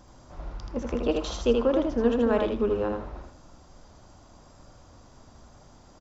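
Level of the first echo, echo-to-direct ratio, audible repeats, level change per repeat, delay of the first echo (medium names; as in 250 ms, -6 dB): -4.0 dB, -4.0 dB, 2, -14.5 dB, 80 ms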